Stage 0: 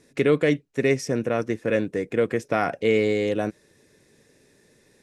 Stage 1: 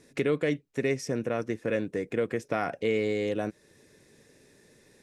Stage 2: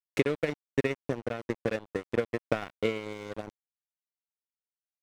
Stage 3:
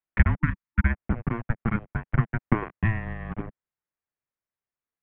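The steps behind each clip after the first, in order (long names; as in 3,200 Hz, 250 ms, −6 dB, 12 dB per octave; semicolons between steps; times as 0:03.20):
downward compressor 1.5 to 1, threshold −35 dBFS, peak gain reduction 7.5 dB
transient designer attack +10 dB, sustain −8 dB; dead-zone distortion −30 dBFS; level −4.5 dB
single-sideband voice off tune −340 Hz 160–2,600 Hz; gain on a spectral selection 0:00.41–0:00.85, 320–890 Hz −17 dB; level +6.5 dB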